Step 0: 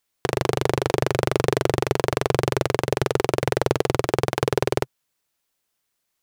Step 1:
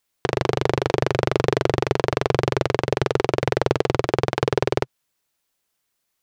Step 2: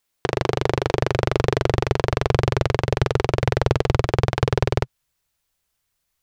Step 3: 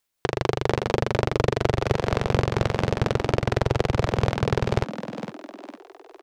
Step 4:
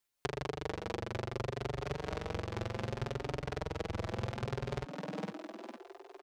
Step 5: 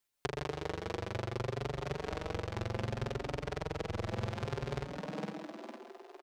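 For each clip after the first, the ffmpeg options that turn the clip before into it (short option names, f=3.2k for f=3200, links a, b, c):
-filter_complex "[0:a]acrossover=split=6500[a][b];[b]acompressor=threshold=-50dB:ratio=4:attack=1:release=60[c];[a][c]amix=inputs=2:normalize=0,volume=1dB"
-af "asubboost=boost=5.5:cutoff=110"
-filter_complex "[0:a]tremolo=f=4.2:d=0.31,asplit=2[a][b];[b]asplit=5[c][d][e][f][g];[c]adelay=457,afreqshift=88,volume=-10.5dB[h];[d]adelay=914,afreqshift=176,volume=-17.6dB[i];[e]adelay=1371,afreqshift=264,volume=-24.8dB[j];[f]adelay=1828,afreqshift=352,volume=-31.9dB[k];[g]adelay=2285,afreqshift=440,volume=-39dB[l];[h][i][j][k][l]amix=inputs=5:normalize=0[m];[a][m]amix=inputs=2:normalize=0,volume=-1.5dB"
-filter_complex "[0:a]acompressor=threshold=-27dB:ratio=6,asplit=2[a][b];[b]adelay=5.3,afreqshift=0.67[c];[a][c]amix=inputs=2:normalize=1,volume=-2.5dB"
-af "aecho=1:1:134|268|402:0.316|0.0822|0.0214"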